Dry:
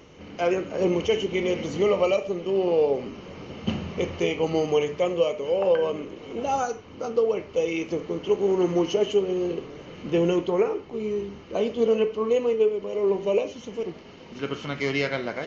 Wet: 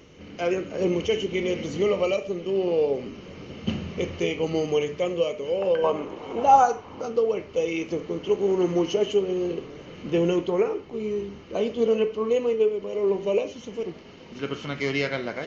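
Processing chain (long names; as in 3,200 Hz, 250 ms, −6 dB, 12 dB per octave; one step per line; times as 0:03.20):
parametric band 880 Hz −5.5 dB 1.1 octaves, from 0:05.84 +11.5 dB, from 0:07.01 −2 dB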